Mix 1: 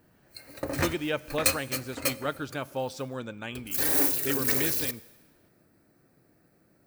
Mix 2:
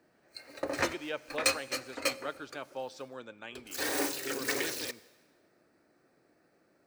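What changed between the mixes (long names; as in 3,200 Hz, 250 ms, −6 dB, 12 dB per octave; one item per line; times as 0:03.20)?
speech −6.5 dB
master: add three-way crossover with the lows and the highs turned down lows −14 dB, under 280 Hz, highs −16 dB, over 7,800 Hz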